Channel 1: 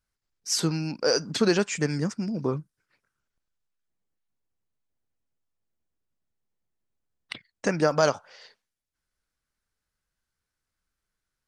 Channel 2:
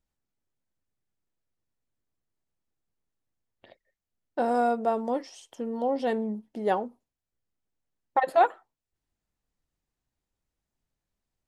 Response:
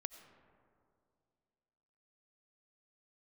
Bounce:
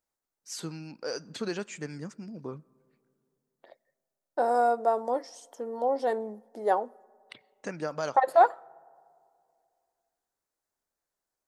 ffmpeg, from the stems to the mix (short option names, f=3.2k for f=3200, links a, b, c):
-filter_complex "[0:a]equalizer=f=5.3k:t=o:w=0.25:g=-6,volume=-12dB,asplit=2[a][b];[b]volume=-12dB[c];[1:a]highpass=440,equalizer=f=2.8k:t=o:w=0.86:g=-15,volume=2dB,asplit=2[d][e];[e]volume=-15.5dB[f];[2:a]atrim=start_sample=2205[g];[c][f]amix=inputs=2:normalize=0[h];[h][g]afir=irnorm=-1:irlink=0[i];[a][d][i]amix=inputs=3:normalize=0,lowshelf=f=110:g=-6"